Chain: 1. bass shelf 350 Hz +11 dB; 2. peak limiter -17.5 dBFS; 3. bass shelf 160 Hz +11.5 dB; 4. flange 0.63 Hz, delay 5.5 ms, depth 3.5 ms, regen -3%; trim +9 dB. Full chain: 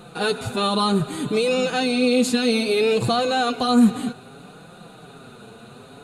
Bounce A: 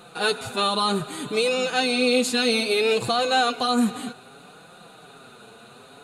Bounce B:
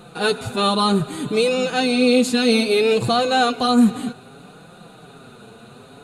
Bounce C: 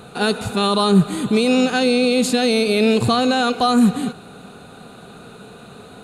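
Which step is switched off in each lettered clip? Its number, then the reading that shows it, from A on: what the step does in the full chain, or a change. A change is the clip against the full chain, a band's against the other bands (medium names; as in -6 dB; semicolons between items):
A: 1, 125 Hz band -8.5 dB; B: 2, 125 Hz band -2.0 dB; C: 4, momentary loudness spread change -2 LU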